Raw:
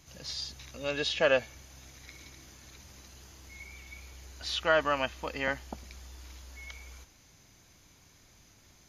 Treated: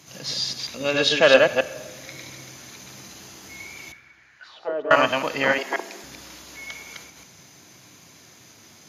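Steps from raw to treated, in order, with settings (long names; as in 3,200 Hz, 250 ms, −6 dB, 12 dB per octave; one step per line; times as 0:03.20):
delay that plays each chunk backwards 134 ms, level −2 dB
high-pass filter 120 Hz 24 dB per octave
in parallel at −4 dB: asymmetric clip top −17 dBFS
0:03.92–0:04.91: on the sum: envelope filter 420–1,900 Hz, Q 4.6, down, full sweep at −21 dBFS
on a send at −14 dB: convolution reverb RT60 1.6 s, pre-delay 3 ms
0:05.58–0:06.04: on the sum: frequency shifter +130 Hz
level +5 dB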